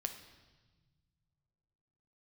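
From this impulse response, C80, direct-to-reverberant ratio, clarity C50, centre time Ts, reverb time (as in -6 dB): 11.5 dB, 6.0 dB, 9.0 dB, 16 ms, 1.3 s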